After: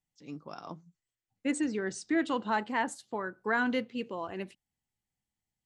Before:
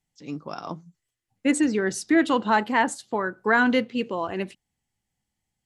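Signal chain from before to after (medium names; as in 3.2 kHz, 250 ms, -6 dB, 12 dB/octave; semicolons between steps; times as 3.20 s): 0.64–2.71 s: brick-wall FIR low-pass 9.4 kHz; trim -9 dB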